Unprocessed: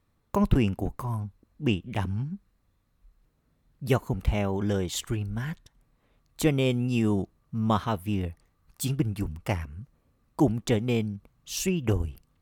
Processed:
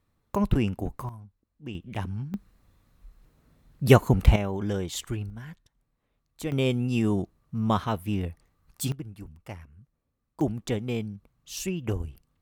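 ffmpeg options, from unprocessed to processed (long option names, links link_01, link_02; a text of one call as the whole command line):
ffmpeg -i in.wav -af "asetnsamples=nb_out_samples=441:pad=0,asendcmd='1.09 volume volume -13dB;1.75 volume volume -3dB;2.34 volume volume 8dB;4.36 volume volume -2dB;5.3 volume volume -9dB;6.52 volume volume 0dB;8.92 volume volume -12dB;10.41 volume volume -4dB',volume=-1.5dB" out.wav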